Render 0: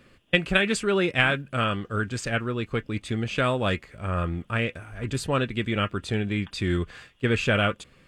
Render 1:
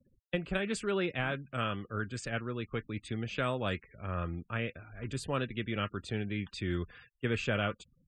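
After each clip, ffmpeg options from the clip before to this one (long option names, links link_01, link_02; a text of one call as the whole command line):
ffmpeg -i in.wav -filter_complex "[0:a]afftfilt=real='re*gte(hypot(re,im),0.00631)':imag='im*gte(hypot(re,im),0.00631)':win_size=1024:overlap=0.75,acrossover=split=170|1200[link_01][link_02][link_03];[link_03]alimiter=limit=-16.5dB:level=0:latency=1:release=256[link_04];[link_01][link_02][link_04]amix=inputs=3:normalize=0,volume=-8.5dB" out.wav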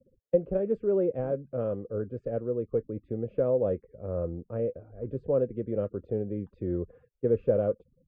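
ffmpeg -i in.wav -af "lowpass=frequency=510:width_type=q:width=5.4" out.wav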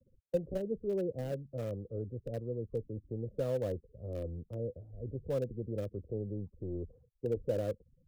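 ffmpeg -i in.wav -filter_complex "[0:a]acrossover=split=140|480|790[link_01][link_02][link_03][link_04];[link_01]aeval=exprs='0.0282*sin(PI/2*2.51*val(0)/0.0282)':channel_layout=same[link_05];[link_04]acrusher=bits=6:mix=0:aa=0.000001[link_06];[link_05][link_02][link_03][link_06]amix=inputs=4:normalize=0,volume=-8.5dB" out.wav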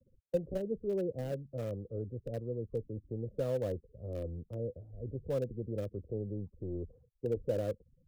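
ffmpeg -i in.wav -af anull out.wav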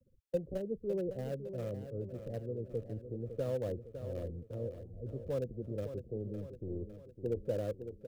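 ffmpeg -i in.wav -af "aecho=1:1:557|1114|1671|2228|2785:0.316|0.158|0.0791|0.0395|0.0198,volume=-2dB" out.wav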